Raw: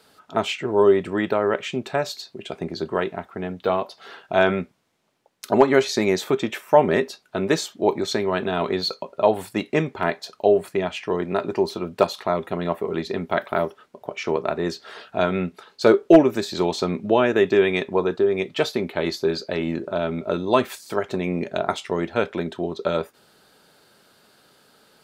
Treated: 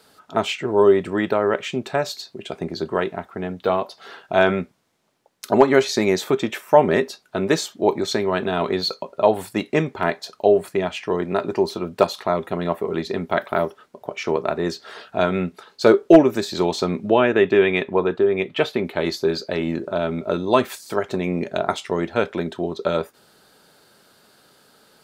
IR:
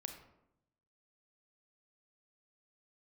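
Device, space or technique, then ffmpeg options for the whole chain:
exciter from parts: -filter_complex "[0:a]asplit=2[a][b];[b]highpass=f=2.4k:w=0.5412,highpass=f=2.4k:w=1.3066,asoftclip=type=tanh:threshold=-38.5dB,volume=-13.5dB[c];[a][c]amix=inputs=2:normalize=0,asettb=1/sr,asplit=3[d][e][f];[d]atrim=end=17.104[g];[e]atrim=start=17.1:end=18.85,asetpts=PTS-STARTPTS,afade=t=in:d=0.004:c=qsin,afade=t=out:st=1.746:d=0.004:c=qsin,highshelf=f=3.9k:t=q:w=1.5:g=-8[h];[f]atrim=start=18.846[i];[g][h]acrossfade=d=0.004:c1=hsin:c2=qsin[j];[j][i]acrossfade=d=0.004:c1=qsin:c2=hsin,volume=1.5dB"

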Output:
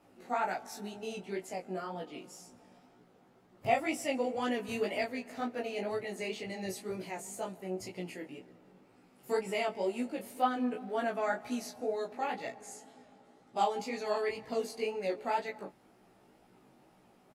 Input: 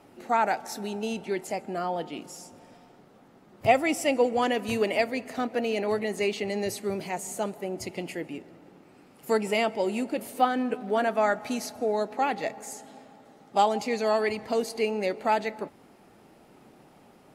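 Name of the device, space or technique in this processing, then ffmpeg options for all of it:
double-tracked vocal: -filter_complex "[0:a]asettb=1/sr,asplit=3[a][b][c];[a]atrim=end=12.524[d];[b]atrim=start=12.52:end=13.6,asetpts=PTS-STARTPTS,afade=t=in:d=0.004:c=qsin,afade=t=out:st=1.076:d=0.004:c=qsin,lowpass=f=12k:w=0.5412,lowpass=f=12k:w=1.3066[e];[c]atrim=start=13.596[f];[d][e]acrossfade=d=0.004:c1=hsin:c2=qsin[g];[g][f]acrossfade=d=0.004:c1=qsin:c2=hsin,asplit=2[h][i];[i]adelay=16,volume=-3dB[j];[h][j]amix=inputs=2:normalize=0,flanger=delay=16.5:depth=5:speed=2,volume=-6.5dB"

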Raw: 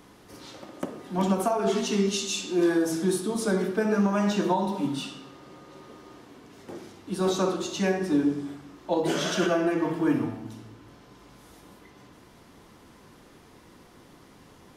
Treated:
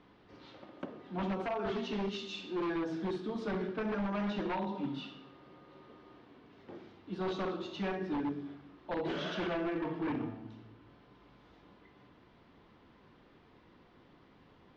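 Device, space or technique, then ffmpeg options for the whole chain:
synthesiser wavefolder: -af "aeval=exprs='0.0944*(abs(mod(val(0)/0.0944+3,4)-2)-1)':c=same,lowpass=f=3.9k:w=0.5412,lowpass=f=3.9k:w=1.3066,volume=-8.5dB"

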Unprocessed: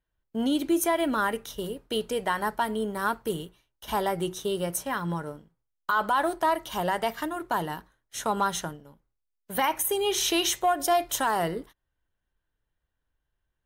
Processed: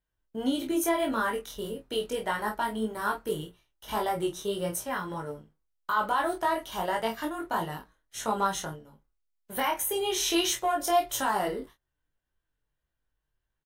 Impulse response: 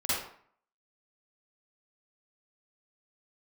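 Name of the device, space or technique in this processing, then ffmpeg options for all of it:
double-tracked vocal: -filter_complex "[0:a]asplit=2[a][b];[b]adelay=27,volume=-6dB[c];[a][c]amix=inputs=2:normalize=0,flanger=delay=18:depth=2.7:speed=1.7"

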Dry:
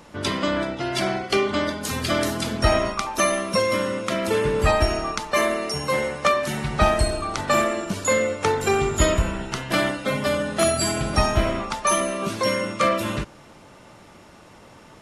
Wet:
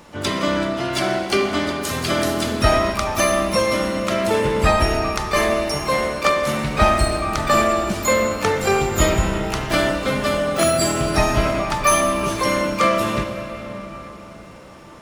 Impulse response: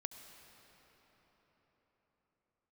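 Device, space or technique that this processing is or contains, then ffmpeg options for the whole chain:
shimmer-style reverb: -filter_complex "[0:a]asettb=1/sr,asplit=3[a][b][c];[a]atrim=end=11.074[d];[b]atrim=start=11.07:end=12.74,asetpts=PTS-STARTPTS,afade=t=in:d=0.004:c=qsin,afade=t=out:st=1.666:d=0.004:c=qsin,aecho=1:1:6.8:0.46,atrim=end_sample=73647[e];[c]atrim=start=12.736[f];[d][e]acrossfade=d=0.004:c1=hsin:c2=qsin[g];[g][f]acrossfade=d=0.004:c1=qsin:c2=hsin,asplit=2[h][i];[i]asetrate=88200,aresample=44100,atempo=0.5,volume=-12dB[j];[h][j]amix=inputs=2:normalize=0[k];[1:a]atrim=start_sample=2205[l];[k][l]afir=irnorm=-1:irlink=0,volume=5.5dB"

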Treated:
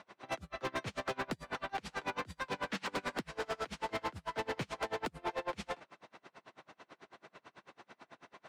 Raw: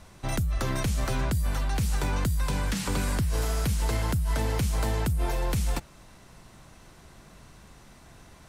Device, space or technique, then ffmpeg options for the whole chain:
helicopter radio: -af "highpass=370,lowpass=3k,aeval=exprs='val(0)*pow(10,-33*(0.5-0.5*cos(2*PI*9.1*n/s))/20)':c=same,asoftclip=type=hard:threshold=-37dB,volume=6dB"

